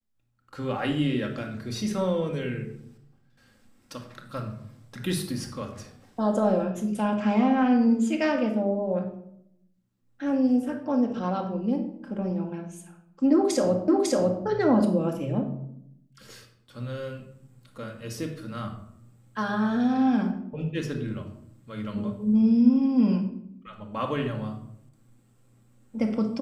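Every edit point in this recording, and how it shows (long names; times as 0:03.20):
0:13.88: the same again, the last 0.55 s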